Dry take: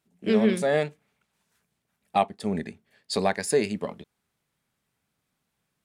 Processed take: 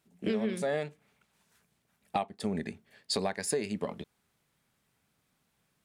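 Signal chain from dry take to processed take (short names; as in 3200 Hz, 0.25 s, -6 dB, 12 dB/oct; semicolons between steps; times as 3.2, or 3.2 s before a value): compressor 5:1, threshold -32 dBFS, peak gain reduction 14.5 dB; gain +3 dB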